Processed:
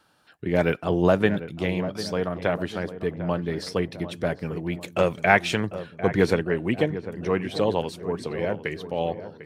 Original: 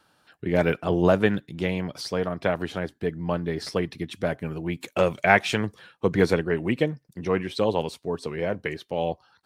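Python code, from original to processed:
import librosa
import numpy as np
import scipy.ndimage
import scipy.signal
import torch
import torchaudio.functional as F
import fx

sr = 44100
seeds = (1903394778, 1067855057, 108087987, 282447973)

y = fx.echo_filtered(x, sr, ms=748, feedback_pct=55, hz=1300.0, wet_db=-12)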